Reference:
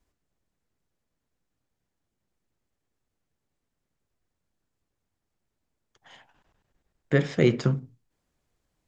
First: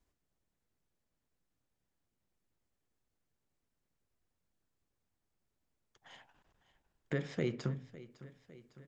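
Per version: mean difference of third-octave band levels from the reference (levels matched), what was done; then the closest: 3.5 dB: compressor 2:1, threshold -34 dBFS, peak gain reduction 10.5 dB; on a send: feedback echo 0.555 s, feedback 60%, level -17.5 dB; on the sum: gain -4.5 dB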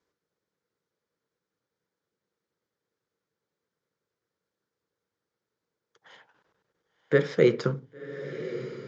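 2.5 dB: speaker cabinet 180–6200 Hz, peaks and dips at 250 Hz -7 dB, 470 Hz +8 dB, 710 Hz -7 dB, 1400 Hz +4 dB, 2700 Hz -6 dB; diffused feedback echo 1.088 s, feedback 59%, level -12 dB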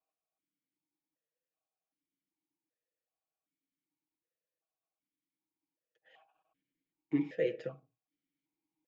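6.5 dB: comb 6.3 ms, depth 83%; vowel sequencer 2.6 Hz; gain -2.5 dB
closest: second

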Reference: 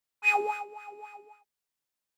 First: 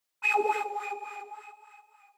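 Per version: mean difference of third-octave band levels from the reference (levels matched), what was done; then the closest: 5.0 dB: low shelf 180 Hz -11 dB; limiter -24 dBFS, peak gain reduction 9.5 dB; on a send: split-band echo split 760 Hz, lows 0.101 s, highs 0.293 s, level -8 dB; on the sum: tape flanging out of phase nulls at 1.5 Hz, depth 7.9 ms; gain +8 dB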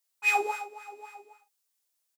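3.0 dB: HPF 140 Hz; tone controls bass -11 dB, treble +9 dB; on a send: early reflections 15 ms -8.5 dB, 50 ms -10 dB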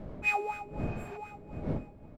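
11.5 dB: wind noise 240 Hz -35 dBFS; echo 0.732 s -8 dB; spectral repair 0.89–1.14, 680–6900 Hz before; small resonant body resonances 620/2200 Hz, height 10 dB, ringing for 45 ms; gain -5 dB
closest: second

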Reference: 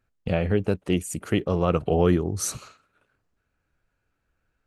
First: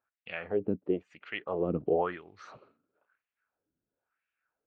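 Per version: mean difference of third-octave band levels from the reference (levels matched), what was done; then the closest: 8.5 dB: LPF 4100 Hz 24 dB/oct; LFO band-pass sine 0.99 Hz 250–2500 Hz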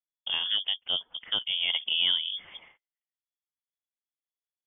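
15.5 dB: gate -51 dBFS, range -30 dB; inverted band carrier 3400 Hz; gain -6.5 dB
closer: first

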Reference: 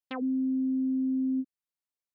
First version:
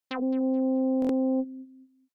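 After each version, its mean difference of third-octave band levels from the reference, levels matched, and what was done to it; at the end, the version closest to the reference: 4.5 dB: HPF 150 Hz 6 dB/oct; feedback echo 0.214 s, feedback 30%, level -18 dB; stuck buffer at 1, samples 1024, times 3; Doppler distortion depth 0.55 ms; gain +4 dB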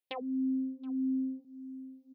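1.0 dB: low shelf 96 Hz -10.5 dB; on a send: echo 0.725 s -18 dB; on the sum: compressor 2.5:1, threshold -35 dBFS, peak gain reduction 5 dB; endless phaser +1.6 Hz; gain +4 dB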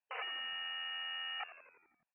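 15.0 dB: comb 1.2 ms, depth 97%; wrapped overs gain 36 dB; brick-wall FIR band-pass 440–3000 Hz; on a send: frequency-shifting echo 85 ms, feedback 61%, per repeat -85 Hz, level -13.5 dB; on the sum: gain +2.5 dB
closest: second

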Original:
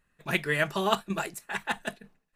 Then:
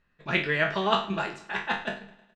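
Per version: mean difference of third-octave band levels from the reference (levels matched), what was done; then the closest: 7.5 dB: spectral trails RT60 0.36 s; LPF 5100 Hz 24 dB/oct; on a send: feedback echo 0.105 s, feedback 59%, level -20 dB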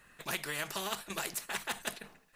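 10.0 dB: low shelf 270 Hz -8.5 dB; compressor, threshold -29 dBFS, peak gain reduction 9.5 dB; spectral compressor 2:1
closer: first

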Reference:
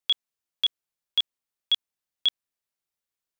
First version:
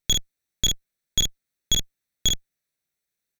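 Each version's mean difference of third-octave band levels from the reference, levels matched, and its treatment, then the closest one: 12.5 dB: minimum comb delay 0.49 ms; bell 160 Hz +2.5 dB 0.36 oct; doubler 48 ms -3.5 dB; gain +4.5 dB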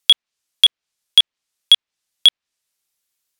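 3.0 dB: treble ducked by the level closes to 2900 Hz, closed at -25 dBFS; high shelf 2200 Hz +11.5 dB; sample leveller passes 1; gain +6.5 dB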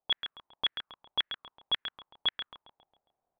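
9.0 dB: recorder AGC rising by 6.8 dB/s; on a send: feedback echo 0.136 s, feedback 51%, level -8 dB; on the sum: envelope low-pass 740–1800 Hz up, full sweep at -23.5 dBFS; gain +3 dB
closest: second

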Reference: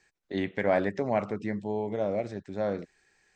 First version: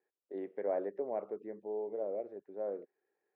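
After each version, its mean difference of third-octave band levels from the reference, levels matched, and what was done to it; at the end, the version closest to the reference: 8.5 dB: ladder band-pass 500 Hz, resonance 45%; gain +1 dB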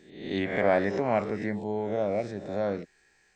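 3.0 dB: spectral swells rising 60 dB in 0.68 s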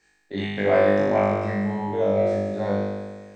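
5.5 dB: flutter echo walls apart 3.4 m, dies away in 1.5 s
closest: second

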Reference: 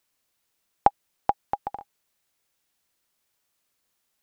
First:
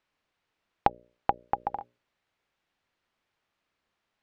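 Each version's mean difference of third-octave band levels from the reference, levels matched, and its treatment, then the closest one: 3.5 dB: LPF 2800 Hz 12 dB/oct; notches 60/120/180/240/300/360/420/480/540/600 Hz; compressor 2.5:1, threshold -25 dBFS, peak gain reduction 9.5 dB; gain +2.5 dB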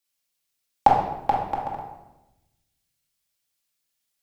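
5.5 dB: in parallel at -1 dB: compressor, threshold -29 dBFS, peak gain reduction 16.5 dB; on the sum: shoebox room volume 900 m³, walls mixed, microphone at 2.3 m; three-band expander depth 40%; gain -4.5 dB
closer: first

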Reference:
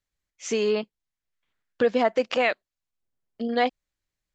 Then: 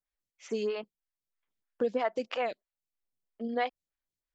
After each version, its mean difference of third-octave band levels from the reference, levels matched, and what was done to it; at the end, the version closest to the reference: 3.0 dB: photocell phaser 3.1 Hz; gain -6 dB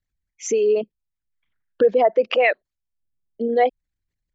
7.0 dB: formant sharpening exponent 2; gain +5.5 dB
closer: first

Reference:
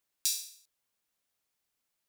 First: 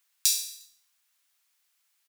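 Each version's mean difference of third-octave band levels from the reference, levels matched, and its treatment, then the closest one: 1.5 dB: HPF 1200 Hz 12 dB/oct; in parallel at -2 dB: compressor, threshold -38 dBFS, peak gain reduction 12.5 dB; on the sum: feedback echo 0.118 s, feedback 53%, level -23.5 dB; gain +5 dB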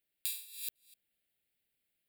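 5.5 dB: reverse delay 0.235 s, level -3.5 dB; fixed phaser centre 2600 Hz, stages 4; dynamic EQ 5600 Hz, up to -4 dB, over -50 dBFS, Q 0.71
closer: first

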